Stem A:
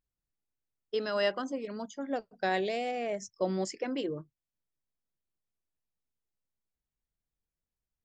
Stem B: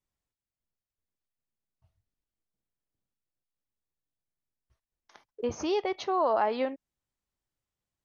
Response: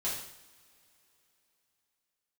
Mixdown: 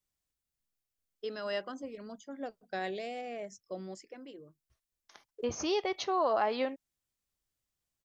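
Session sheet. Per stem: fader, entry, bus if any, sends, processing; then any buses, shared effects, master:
−6.5 dB, 0.30 s, no send, automatic ducking −16 dB, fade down 1.75 s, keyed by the second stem
−3.0 dB, 0.00 s, no send, high-shelf EQ 3,000 Hz +8.5 dB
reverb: not used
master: notch filter 910 Hz, Q 14

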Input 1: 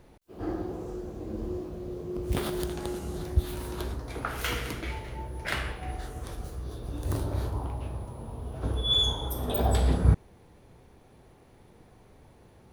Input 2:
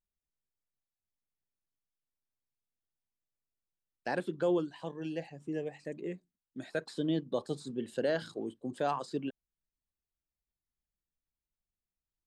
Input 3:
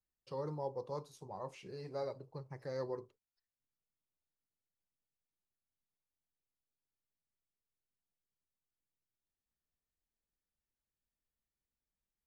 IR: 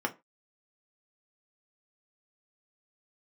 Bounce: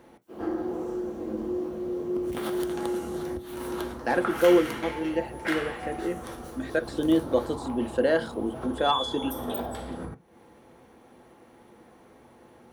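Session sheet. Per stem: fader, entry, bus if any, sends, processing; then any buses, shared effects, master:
−1.0 dB, 0.00 s, send −6 dB, downward compressor 16 to 1, threshold −30 dBFS, peak gain reduction 17 dB
+1.5 dB, 0.00 s, send −4.5 dB, no processing
muted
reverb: on, RT60 0.25 s, pre-delay 3 ms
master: high-pass filter 130 Hz 6 dB per octave

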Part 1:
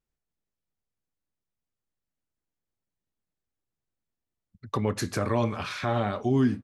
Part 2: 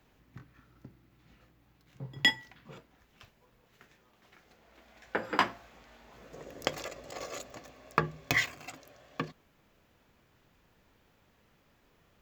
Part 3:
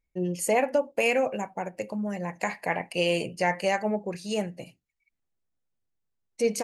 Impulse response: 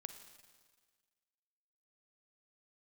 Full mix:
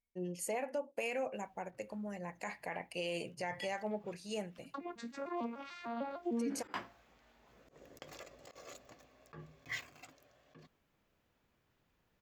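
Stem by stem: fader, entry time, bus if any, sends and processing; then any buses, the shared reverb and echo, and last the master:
−3.5 dB, 0.00 s, no send, vocoder with an arpeggio as carrier minor triad, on A#3, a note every 150 ms; low-shelf EQ 450 Hz −10 dB
−10.5 dB, 1.35 s, no send, volume swells 108 ms
−10.0 dB, 0.00 s, no send, low-shelf EQ 170 Hz −5.5 dB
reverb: not used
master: brickwall limiter −28.5 dBFS, peak gain reduction 11 dB

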